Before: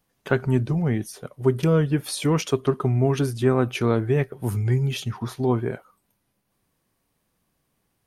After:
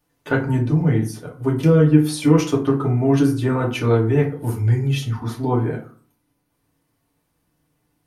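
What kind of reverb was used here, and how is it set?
FDN reverb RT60 0.43 s, low-frequency decay 1.25×, high-frequency decay 0.55×, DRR -2.5 dB; trim -2 dB

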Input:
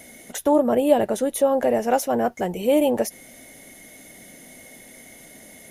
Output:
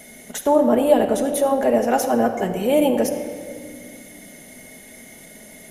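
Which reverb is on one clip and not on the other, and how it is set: simulated room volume 3700 m³, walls mixed, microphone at 1.4 m; trim +1 dB

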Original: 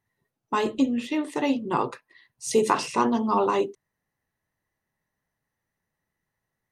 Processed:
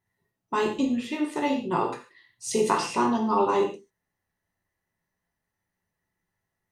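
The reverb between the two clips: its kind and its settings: gated-style reverb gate 170 ms falling, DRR 1 dB; trim -3 dB

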